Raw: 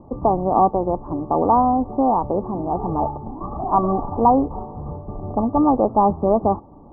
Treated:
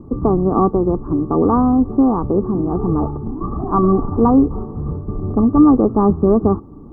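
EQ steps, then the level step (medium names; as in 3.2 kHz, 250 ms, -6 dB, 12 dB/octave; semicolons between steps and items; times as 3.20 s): high-order bell 730 Hz -14.5 dB 1.1 oct; +8.0 dB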